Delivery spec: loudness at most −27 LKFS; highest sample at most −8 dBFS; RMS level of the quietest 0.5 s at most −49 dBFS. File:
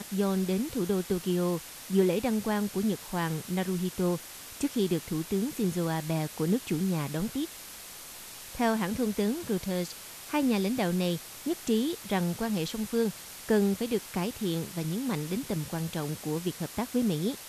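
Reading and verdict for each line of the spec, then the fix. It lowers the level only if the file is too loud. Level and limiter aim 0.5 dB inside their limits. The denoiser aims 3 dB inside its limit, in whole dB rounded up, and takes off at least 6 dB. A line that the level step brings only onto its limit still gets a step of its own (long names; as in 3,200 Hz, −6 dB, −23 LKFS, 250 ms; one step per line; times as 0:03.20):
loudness −30.5 LKFS: in spec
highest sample −12.0 dBFS: in spec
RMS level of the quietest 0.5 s −45 dBFS: out of spec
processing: broadband denoise 7 dB, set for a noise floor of −45 dBFS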